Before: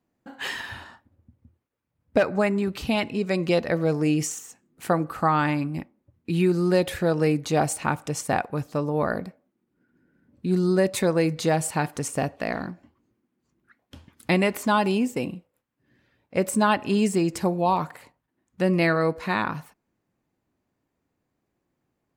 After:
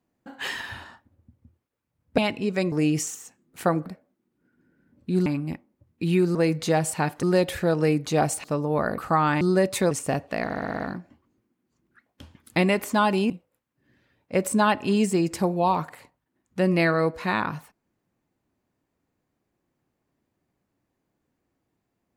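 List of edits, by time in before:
2.18–2.91 s: delete
3.45–3.96 s: delete
5.10–5.53 s: swap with 9.22–10.62 s
7.83–8.68 s: delete
11.12–12.00 s: move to 6.62 s
12.53 s: stutter 0.06 s, 7 plays
15.03–15.32 s: delete

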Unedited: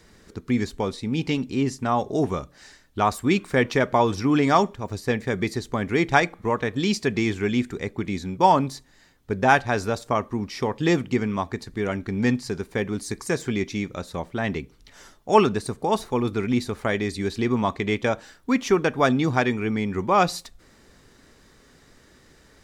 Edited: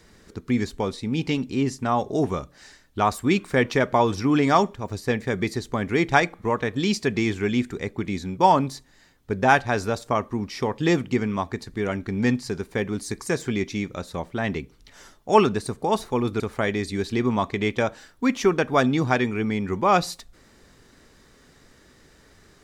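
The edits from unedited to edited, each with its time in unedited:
16.40–16.66 s: delete

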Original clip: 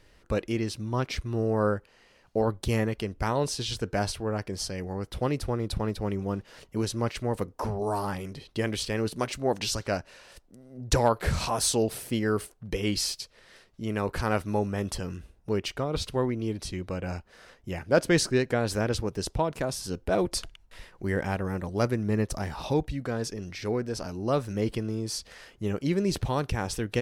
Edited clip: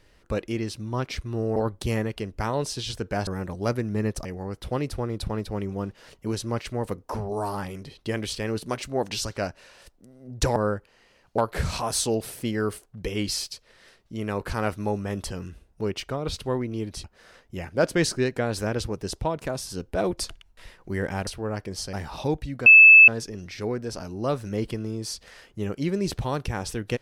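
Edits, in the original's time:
1.56–2.38 s: move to 11.06 s
4.09–4.75 s: swap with 21.41–22.39 s
16.72–17.18 s: delete
23.12 s: add tone 2.62 kHz -7 dBFS 0.42 s

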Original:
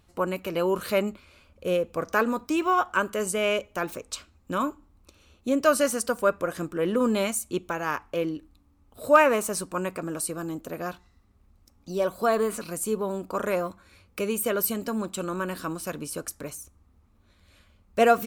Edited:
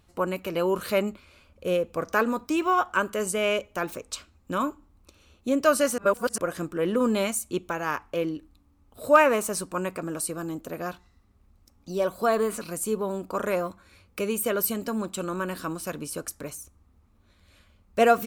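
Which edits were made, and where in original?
5.98–6.38 s: reverse

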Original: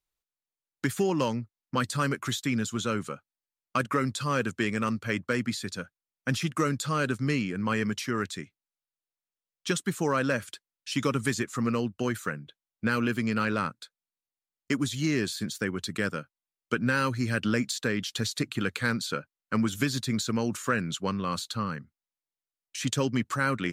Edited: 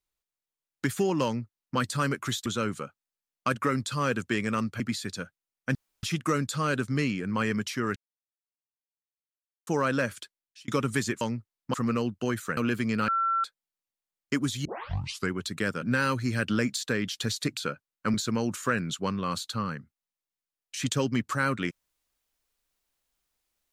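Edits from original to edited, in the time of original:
1.25–1.78 s: copy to 11.52 s
2.46–2.75 s: delete
5.09–5.39 s: delete
6.34 s: insert room tone 0.28 s
8.27–9.98 s: mute
10.51–10.99 s: fade out linear
12.35–12.95 s: delete
13.46–13.82 s: bleep 1.35 kHz -23 dBFS
15.03 s: tape start 0.67 s
16.20–16.77 s: delete
18.52–19.04 s: delete
19.61–20.15 s: delete

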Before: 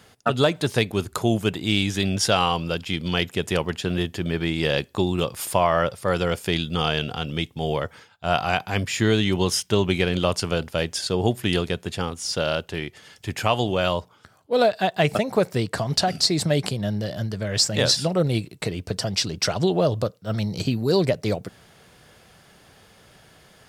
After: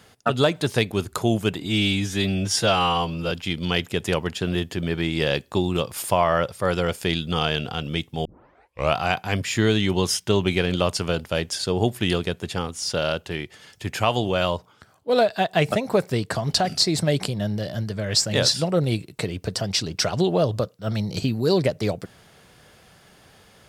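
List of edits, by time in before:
1.60–2.74 s: stretch 1.5×
7.68 s: tape start 0.71 s

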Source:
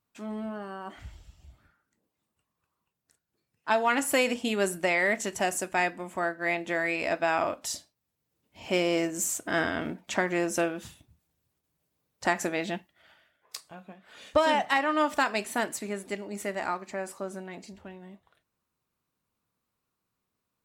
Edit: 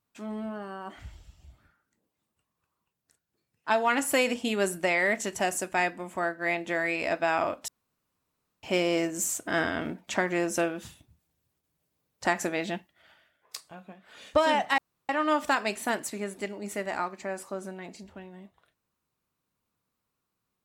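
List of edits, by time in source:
7.68–8.63 s: room tone
14.78 s: insert room tone 0.31 s

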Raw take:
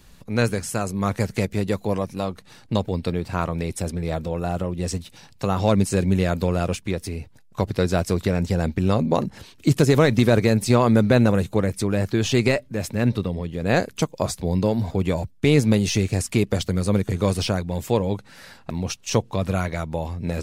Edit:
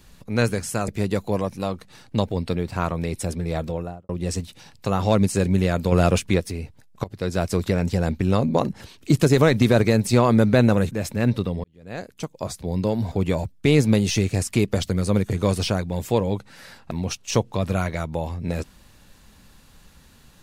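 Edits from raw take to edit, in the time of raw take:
0.88–1.45 s: delete
4.24–4.66 s: studio fade out
6.49–6.97 s: gain +5.5 dB
7.61–8.25 s: fade in equal-power, from -19 dB
11.48–12.70 s: delete
13.43–14.98 s: fade in

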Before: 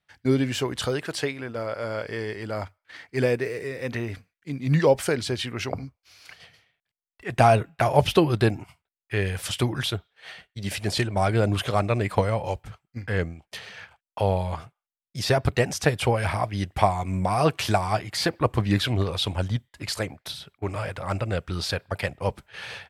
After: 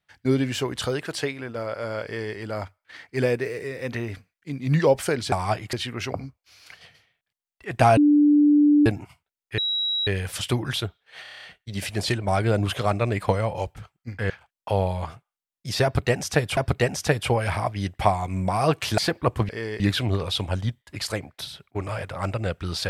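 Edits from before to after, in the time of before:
2.05–2.36 s: copy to 18.67 s
7.56–8.45 s: bleep 294 Hz -13 dBFS
9.17 s: add tone 3.87 kHz -22 dBFS 0.49 s
10.32 s: stutter 0.03 s, 8 plays
13.19–13.80 s: delete
15.34–16.07 s: loop, 2 plays
17.75–18.16 s: move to 5.32 s

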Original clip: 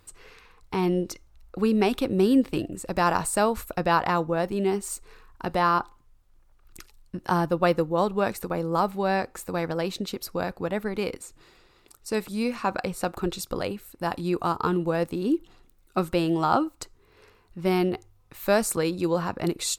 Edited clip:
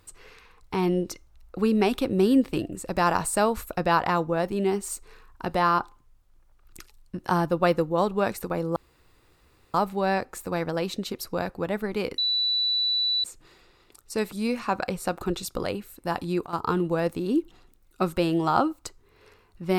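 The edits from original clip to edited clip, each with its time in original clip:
8.76 s: insert room tone 0.98 s
11.20 s: add tone 3.96 kHz -21.5 dBFS 1.06 s
14.10–14.81 s: dip -13.5 dB, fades 0.32 s logarithmic

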